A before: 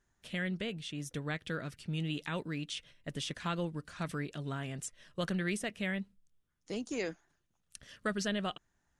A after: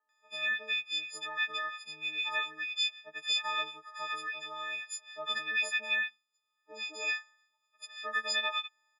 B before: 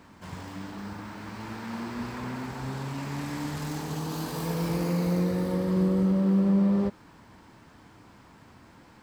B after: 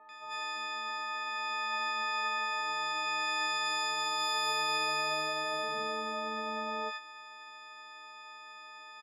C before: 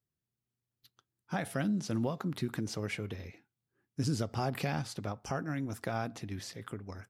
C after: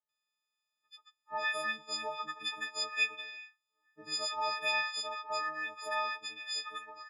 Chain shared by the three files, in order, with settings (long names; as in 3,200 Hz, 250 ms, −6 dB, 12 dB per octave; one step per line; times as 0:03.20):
every partial snapped to a pitch grid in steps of 6 semitones
flat-topped band-pass 1,900 Hz, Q 0.6
multiband delay without the direct sound lows, highs 90 ms, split 1,200 Hz
level +3 dB